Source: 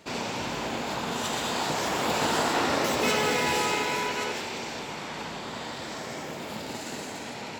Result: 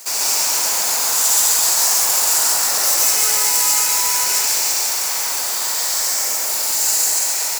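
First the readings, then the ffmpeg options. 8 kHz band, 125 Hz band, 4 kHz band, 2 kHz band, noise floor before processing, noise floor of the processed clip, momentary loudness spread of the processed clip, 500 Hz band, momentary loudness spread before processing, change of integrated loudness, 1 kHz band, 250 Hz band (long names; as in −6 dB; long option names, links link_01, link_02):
+23.5 dB, below −10 dB, +12.0 dB, +4.0 dB, −38 dBFS, −21 dBFS, 5 LU, −3.5 dB, 11 LU, +14.5 dB, +2.5 dB, below −10 dB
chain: -filter_complex "[0:a]highpass=780,alimiter=limit=-23.5dB:level=0:latency=1,acrusher=bits=2:mode=log:mix=0:aa=0.000001,asoftclip=type=tanh:threshold=-33dB,aexciter=amount=6.3:drive=7.5:freq=4900,asplit=2[link_01][link_02];[link_02]aecho=0:1:137|186.6:1|0.316[link_03];[link_01][link_03]amix=inputs=2:normalize=0,volume=7.5dB"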